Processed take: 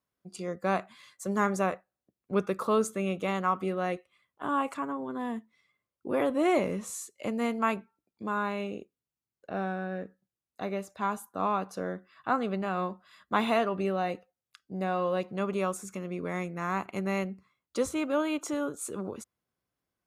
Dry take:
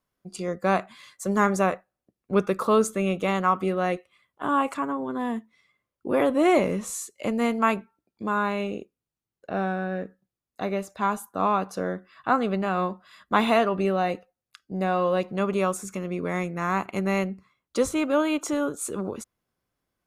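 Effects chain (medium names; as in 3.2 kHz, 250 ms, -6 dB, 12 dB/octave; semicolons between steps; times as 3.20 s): high-pass 51 Hz; trim -5.5 dB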